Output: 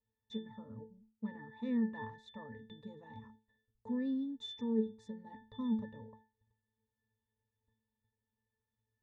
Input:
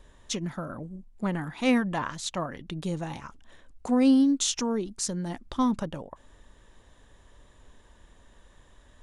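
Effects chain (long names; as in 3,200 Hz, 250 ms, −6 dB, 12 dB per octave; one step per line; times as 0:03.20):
noise gate −47 dBFS, range −20 dB
resonances in every octave A, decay 0.31 s
level +4 dB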